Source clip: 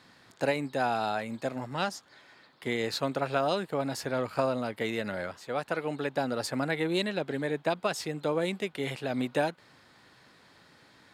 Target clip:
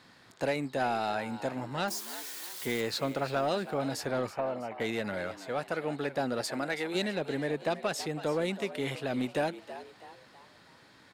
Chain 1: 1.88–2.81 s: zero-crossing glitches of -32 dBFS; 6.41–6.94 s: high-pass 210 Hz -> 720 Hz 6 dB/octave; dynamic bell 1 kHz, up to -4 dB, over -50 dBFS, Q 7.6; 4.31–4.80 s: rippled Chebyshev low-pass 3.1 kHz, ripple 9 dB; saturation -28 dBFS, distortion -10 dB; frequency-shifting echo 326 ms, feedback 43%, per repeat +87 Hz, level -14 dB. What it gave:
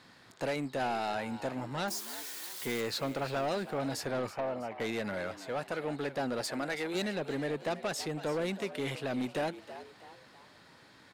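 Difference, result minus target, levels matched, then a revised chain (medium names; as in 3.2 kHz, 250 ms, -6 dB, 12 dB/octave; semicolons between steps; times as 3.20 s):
saturation: distortion +7 dB
1.88–2.81 s: zero-crossing glitches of -32 dBFS; 6.41–6.94 s: high-pass 210 Hz -> 720 Hz 6 dB/octave; dynamic bell 1 kHz, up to -4 dB, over -50 dBFS, Q 7.6; 4.31–4.80 s: rippled Chebyshev low-pass 3.1 kHz, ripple 9 dB; saturation -21.5 dBFS, distortion -18 dB; frequency-shifting echo 326 ms, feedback 43%, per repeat +87 Hz, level -14 dB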